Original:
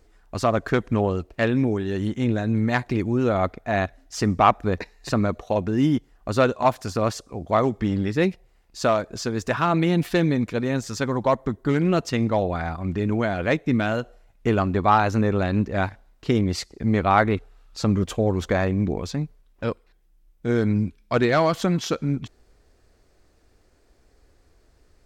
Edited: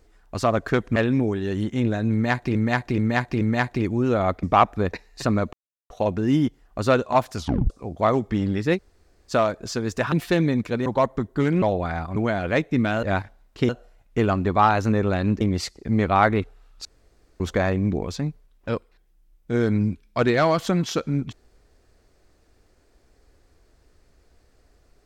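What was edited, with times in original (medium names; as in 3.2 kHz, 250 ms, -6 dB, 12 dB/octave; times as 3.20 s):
0.96–1.40 s: delete
2.56–2.99 s: loop, 4 plays
3.58–4.30 s: delete
5.40 s: insert silence 0.37 s
6.87 s: tape stop 0.33 s
8.26–8.81 s: room tone, crossfade 0.06 s
9.62–9.95 s: delete
10.69–11.15 s: delete
11.91–12.32 s: delete
12.86–13.11 s: delete
15.70–16.36 s: move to 13.98 s
17.80–18.35 s: room tone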